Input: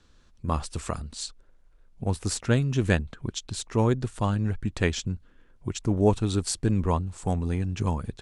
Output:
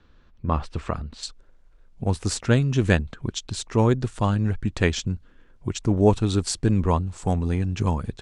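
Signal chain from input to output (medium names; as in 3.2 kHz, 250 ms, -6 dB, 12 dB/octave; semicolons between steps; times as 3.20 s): low-pass 2.9 kHz 12 dB/octave, from 1.23 s 8.3 kHz; trim +3.5 dB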